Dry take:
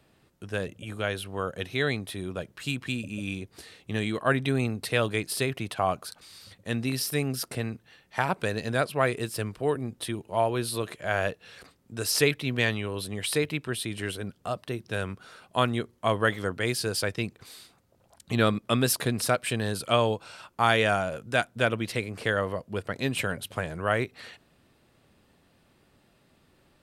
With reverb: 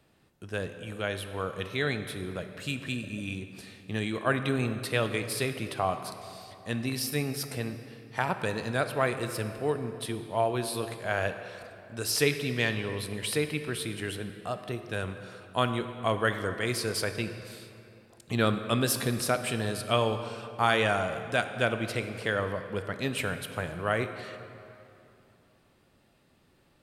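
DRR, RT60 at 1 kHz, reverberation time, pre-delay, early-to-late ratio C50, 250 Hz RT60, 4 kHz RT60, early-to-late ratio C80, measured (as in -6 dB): 8.0 dB, 2.9 s, 2.9 s, 14 ms, 9.0 dB, 2.9 s, 1.9 s, 10.0 dB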